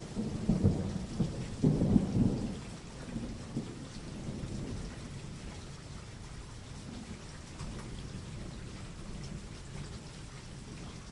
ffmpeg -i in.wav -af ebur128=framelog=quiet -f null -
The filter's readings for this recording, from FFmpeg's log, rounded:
Integrated loudness:
  I:         -37.5 LUFS
  Threshold: -47.5 LUFS
Loudness range:
  LRA:        12.6 LU
  Threshold: -58.7 LUFS
  LRA low:   -45.4 LUFS
  LRA high:  -32.8 LUFS